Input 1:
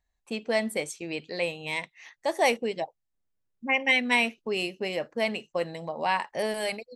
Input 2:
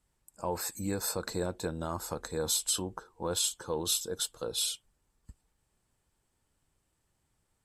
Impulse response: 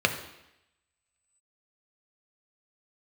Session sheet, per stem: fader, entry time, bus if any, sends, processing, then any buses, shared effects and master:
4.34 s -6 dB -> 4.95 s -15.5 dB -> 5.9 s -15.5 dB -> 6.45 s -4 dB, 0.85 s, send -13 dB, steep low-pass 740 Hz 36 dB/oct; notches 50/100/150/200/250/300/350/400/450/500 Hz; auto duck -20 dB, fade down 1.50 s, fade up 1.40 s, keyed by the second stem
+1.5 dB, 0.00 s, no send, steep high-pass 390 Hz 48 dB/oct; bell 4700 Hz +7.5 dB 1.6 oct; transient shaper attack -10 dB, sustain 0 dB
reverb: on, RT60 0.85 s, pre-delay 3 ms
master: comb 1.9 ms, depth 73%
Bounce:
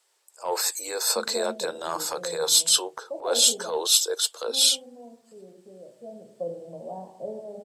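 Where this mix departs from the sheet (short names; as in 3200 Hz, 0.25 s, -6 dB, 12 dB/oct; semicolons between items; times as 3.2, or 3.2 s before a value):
stem 2 +1.5 dB -> +9.0 dB; master: missing comb 1.9 ms, depth 73%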